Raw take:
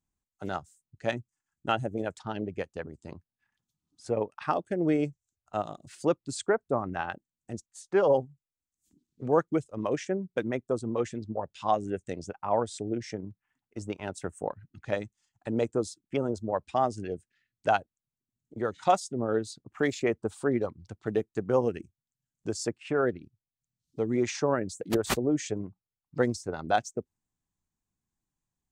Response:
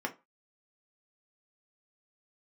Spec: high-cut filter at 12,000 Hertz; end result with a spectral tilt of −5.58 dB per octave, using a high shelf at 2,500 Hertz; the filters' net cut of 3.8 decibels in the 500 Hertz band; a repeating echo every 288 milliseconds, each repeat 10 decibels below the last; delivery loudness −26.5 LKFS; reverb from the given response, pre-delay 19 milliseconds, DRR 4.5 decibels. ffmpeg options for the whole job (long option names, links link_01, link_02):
-filter_complex "[0:a]lowpass=12000,equalizer=frequency=500:width_type=o:gain=-4.5,highshelf=frequency=2500:gain=-3.5,aecho=1:1:288|576|864|1152:0.316|0.101|0.0324|0.0104,asplit=2[link_01][link_02];[1:a]atrim=start_sample=2205,adelay=19[link_03];[link_02][link_03]afir=irnorm=-1:irlink=0,volume=-9dB[link_04];[link_01][link_04]amix=inputs=2:normalize=0,volume=5.5dB"